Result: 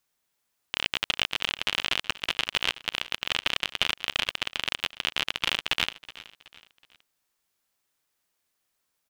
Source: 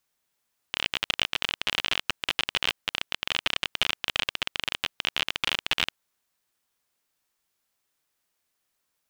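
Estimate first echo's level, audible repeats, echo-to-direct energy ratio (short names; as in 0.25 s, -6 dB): -18.0 dB, 3, -17.0 dB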